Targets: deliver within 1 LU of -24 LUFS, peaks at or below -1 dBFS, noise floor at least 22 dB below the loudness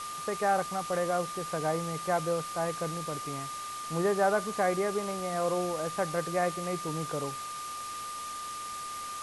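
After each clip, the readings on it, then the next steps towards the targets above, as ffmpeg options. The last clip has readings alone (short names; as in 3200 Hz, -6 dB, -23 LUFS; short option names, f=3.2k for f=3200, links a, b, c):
steady tone 1200 Hz; tone level -37 dBFS; noise floor -39 dBFS; noise floor target -54 dBFS; loudness -32.0 LUFS; peak -14.0 dBFS; loudness target -24.0 LUFS
-> -af "bandreject=f=1.2k:w=30"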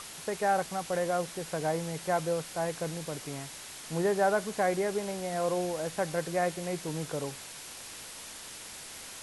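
steady tone none; noise floor -45 dBFS; noise floor target -55 dBFS
-> -af "afftdn=nr=10:nf=-45"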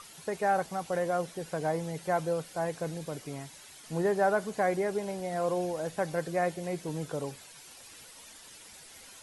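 noise floor -51 dBFS; noise floor target -54 dBFS
-> -af "afftdn=nr=6:nf=-51"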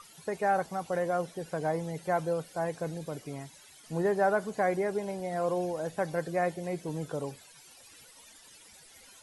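noise floor -55 dBFS; loudness -32.0 LUFS; peak -15.5 dBFS; loudness target -24.0 LUFS
-> -af "volume=8dB"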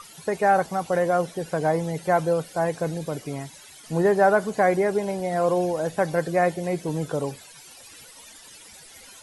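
loudness -24.0 LUFS; peak -7.5 dBFS; noise floor -47 dBFS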